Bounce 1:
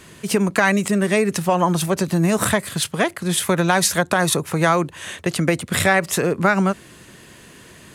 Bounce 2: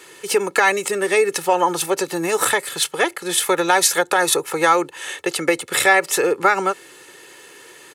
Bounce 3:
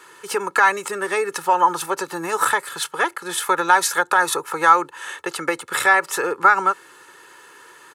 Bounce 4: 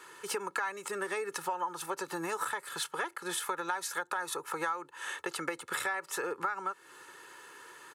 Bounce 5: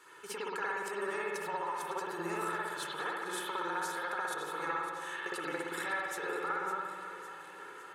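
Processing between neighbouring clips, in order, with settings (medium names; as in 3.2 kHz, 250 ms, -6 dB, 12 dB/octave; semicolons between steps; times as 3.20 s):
high-pass 360 Hz 12 dB/octave; comb 2.3 ms, depth 69%; trim +1 dB
high-order bell 1.2 kHz +10 dB 1.1 oct; trim -6 dB
compression 5:1, threshold -27 dBFS, peak gain reduction 17.5 dB; trim -5.5 dB
echo whose repeats swap between lows and highs 278 ms, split 940 Hz, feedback 76%, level -9 dB; spring tank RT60 1.3 s, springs 59 ms, chirp 45 ms, DRR -5.5 dB; trim -7.5 dB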